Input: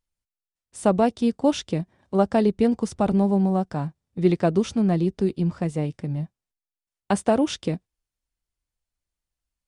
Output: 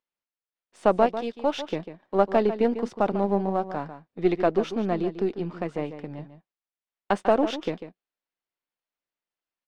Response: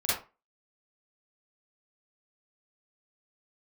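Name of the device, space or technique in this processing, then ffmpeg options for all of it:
crystal radio: -filter_complex "[0:a]asettb=1/sr,asplit=3[link_01][link_02][link_03];[link_01]atrim=end=1.064[link_04];[link_02]atrim=start=1.06:end=1.57,asetpts=PTS-STARTPTS,afade=type=in:duration=0.004:curve=qsin,afade=type=out:start_time=0.506:duration=0.004:curve=qsin,lowshelf=frequency=300:gain=-12[link_05];[link_03]atrim=start=1.566[link_06];[link_04][link_05]acrossfade=duration=0.004:curve1=hsin:curve2=qsin[link_07];[link_07][link_06]acrossfade=duration=0.004:curve1=qsin:curve2=hsin,highpass=330,lowpass=3200,asplit=2[link_08][link_09];[link_09]adelay=145.8,volume=-11dB,highshelf=frequency=4000:gain=-3.28[link_10];[link_08][link_10]amix=inputs=2:normalize=0,aeval=exprs='if(lt(val(0),0),0.708*val(0),val(0))':channel_layout=same,volume=2dB"

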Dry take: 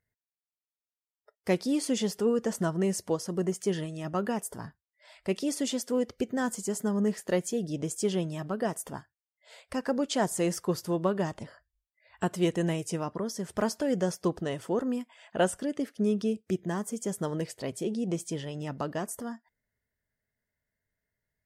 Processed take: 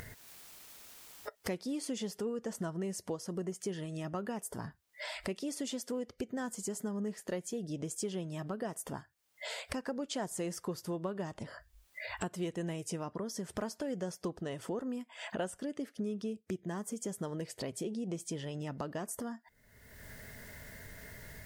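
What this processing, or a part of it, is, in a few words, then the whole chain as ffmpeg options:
upward and downward compression: -af "acompressor=mode=upward:threshold=-31dB:ratio=2.5,acompressor=threshold=-46dB:ratio=3,volume=6dB"

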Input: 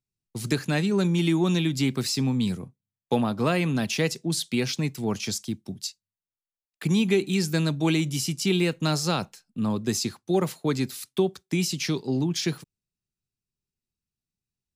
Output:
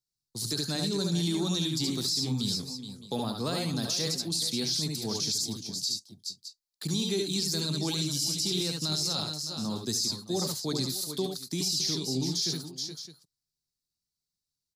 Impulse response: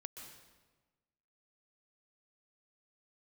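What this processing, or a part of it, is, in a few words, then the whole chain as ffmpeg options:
over-bright horn tweeter: -af "highshelf=frequency=3300:width_type=q:width=3:gain=9.5,aecho=1:1:70|77|422|442|614:0.531|0.355|0.266|0.126|0.133,alimiter=limit=-12.5dB:level=0:latency=1:release=12,volume=-8dB"

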